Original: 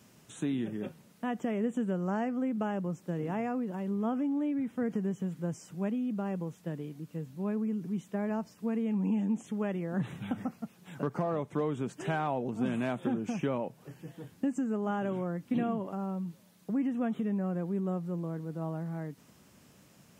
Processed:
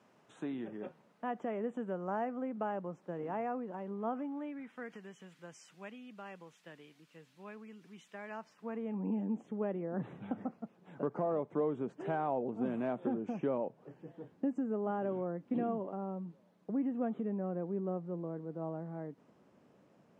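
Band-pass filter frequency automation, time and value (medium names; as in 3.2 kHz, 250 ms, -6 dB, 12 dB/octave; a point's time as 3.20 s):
band-pass filter, Q 0.83
4.09 s 800 Hz
5.00 s 2.6 kHz
8.24 s 2.6 kHz
9.08 s 500 Hz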